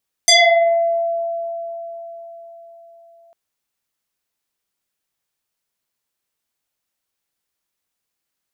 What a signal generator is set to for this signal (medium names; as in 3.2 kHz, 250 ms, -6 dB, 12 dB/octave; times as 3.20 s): FM tone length 3.05 s, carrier 674 Hz, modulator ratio 2.03, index 6.1, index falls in 0.79 s exponential, decay 4.51 s, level -7 dB